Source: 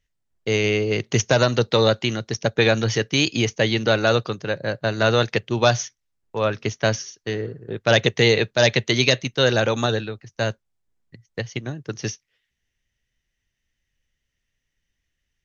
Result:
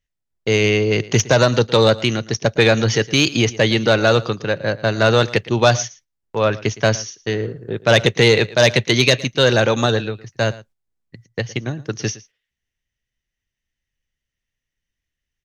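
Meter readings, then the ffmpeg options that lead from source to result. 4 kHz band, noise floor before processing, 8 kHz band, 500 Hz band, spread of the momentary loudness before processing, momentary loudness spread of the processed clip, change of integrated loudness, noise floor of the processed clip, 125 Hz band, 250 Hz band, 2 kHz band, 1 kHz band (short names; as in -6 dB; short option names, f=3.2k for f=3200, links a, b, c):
+3.5 dB, -78 dBFS, n/a, +4.0 dB, 13 LU, 12 LU, +4.0 dB, -83 dBFS, +4.5 dB, +4.0 dB, +3.5 dB, +4.0 dB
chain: -filter_complex "[0:a]agate=range=-10dB:threshold=-52dB:ratio=16:detection=peak,acontrast=49,asplit=2[a][b];[b]aecho=0:1:113:0.106[c];[a][c]amix=inputs=2:normalize=0,volume=-1dB"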